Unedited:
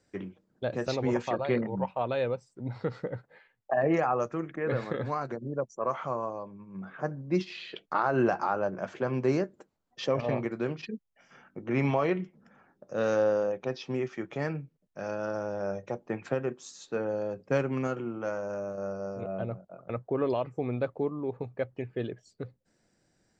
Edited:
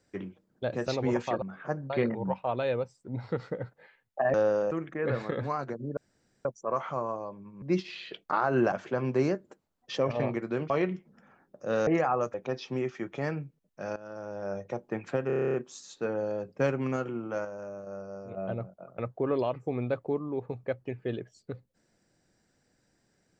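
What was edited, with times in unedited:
0:03.86–0:04.33: swap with 0:13.15–0:13.52
0:05.59: splice in room tone 0.48 s
0:06.76–0:07.24: move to 0:01.42
0:08.34–0:08.81: remove
0:10.79–0:11.98: remove
0:15.14–0:15.86: fade in, from −15.5 dB
0:16.45: stutter 0.03 s, 10 plays
0:18.36–0:19.28: clip gain −5.5 dB

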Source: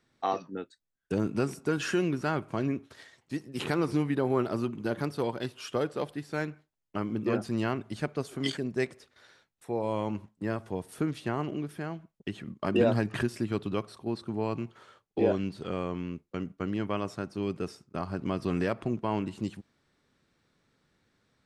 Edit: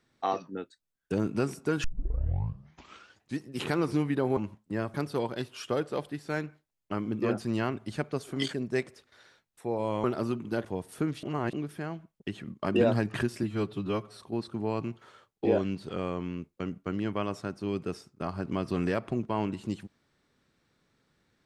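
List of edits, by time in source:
0:01.84: tape start 1.57 s
0:04.37–0:04.98: swap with 0:10.08–0:10.65
0:11.23–0:11.53: reverse
0:13.43–0:13.95: time-stretch 1.5×

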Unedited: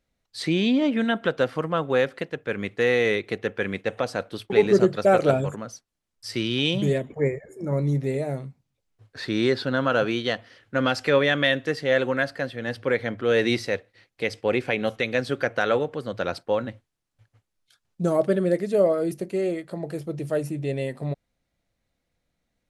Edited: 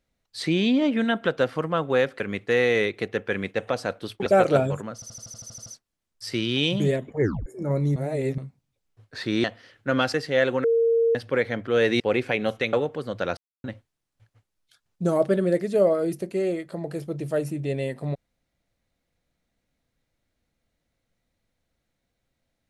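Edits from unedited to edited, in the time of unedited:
0:02.20–0:02.50: remove
0:04.56–0:05.00: remove
0:05.68: stutter 0.08 s, 10 plays
0:07.23: tape stop 0.25 s
0:07.98–0:08.40: reverse
0:09.46–0:10.31: remove
0:11.01–0:11.68: remove
0:12.18–0:12.69: beep over 460 Hz −17 dBFS
0:13.54–0:14.39: remove
0:15.12–0:15.72: remove
0:16.36–0:16.63: silence

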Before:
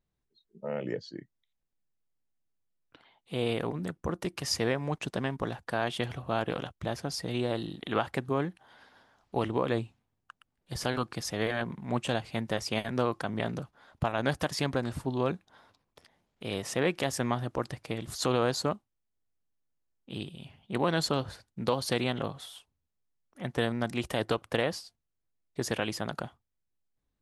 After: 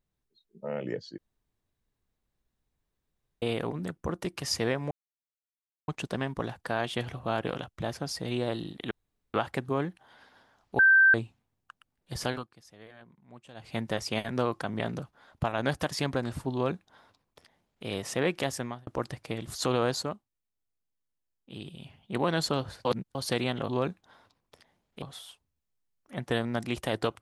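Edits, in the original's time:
0:01.18–0:03.42: fill with room tone
0:04.91: splice in silence 0.97 s
0:07.94: splice in room tone 0.43 s
0:09.39–0:09.74: beep over 1,560 Hz −15.5 dBFS
0:10.89–0:12.33: duck −20.5 dB, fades 0.18 s
0:15.13–0:16.46: duplicate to 0:22.29
0:17.06–0:17.47: fade out
0:18.63–0:20.25: clip gain −4.5 dB
0:21.45–0:21.75: reverse

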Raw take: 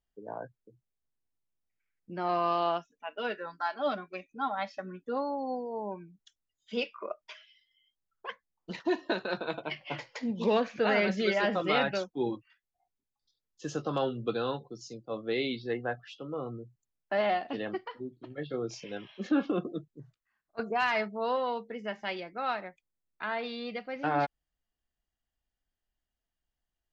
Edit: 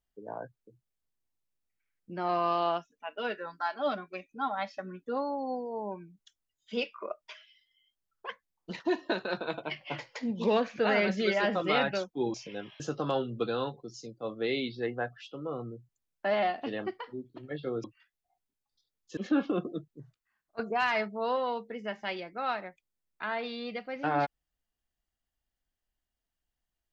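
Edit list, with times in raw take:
0:12.34–0:13.67: swap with 0:18.71–0:19.17

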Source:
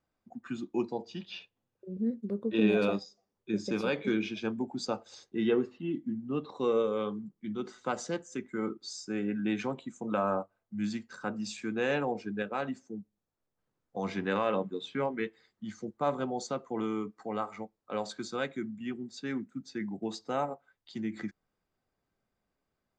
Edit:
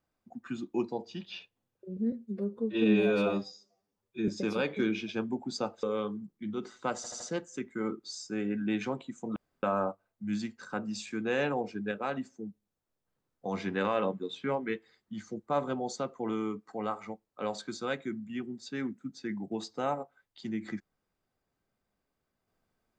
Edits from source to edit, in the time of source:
0:02.12–0:03.56: time-stretch 1.5×
0:05.11–0:06.85: remove
0:07.98: stutter 0.08 s, 4 plays
0:10.14: splice in room tone 0.27 s

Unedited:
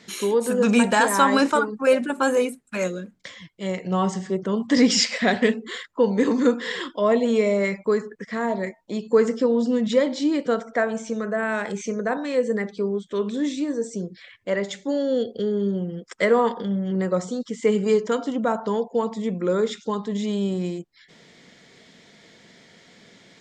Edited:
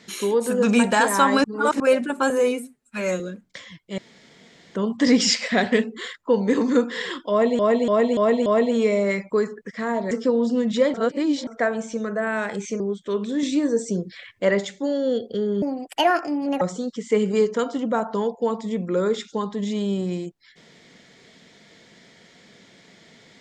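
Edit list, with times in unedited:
0:01.44–0:01.80: reverse
0:02.30–0:02.90: time-stretch 1.5×
0:03.68–0:04.45: fill with room tone
0:07.00–0:07.29: repeat, 5 plays
0:08.65–0:09.27: remove
0:10.10–0:10.63: reverse
0:11.96–0:12.85: remove
0:13.48–0:14.70: clip gain +4.5 dB
0:15.67–0:17.14: play speed 148%

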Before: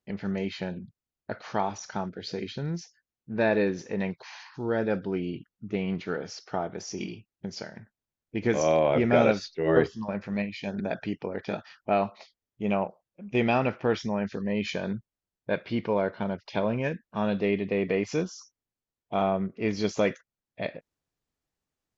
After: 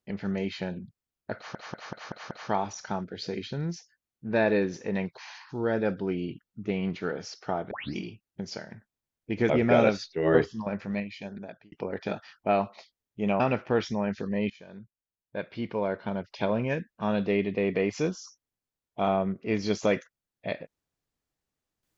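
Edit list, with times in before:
0:01.36: stutter 0.19 s, 6 plays
0:06.76: tape start 0.25 s
0:08.55–0:08.92: remove
0:10.23–0:11.14: fade out
0:12.82–0:13.54: remove
0:14.64–0:16.58: fade in, from −22.5 dB

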